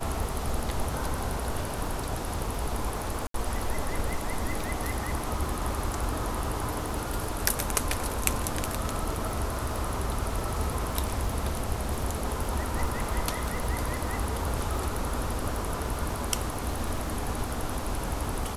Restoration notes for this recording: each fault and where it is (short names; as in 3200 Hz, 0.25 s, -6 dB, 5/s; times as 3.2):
crackle 71/s -35 dBFS
3.27–3.34 gap 73 ms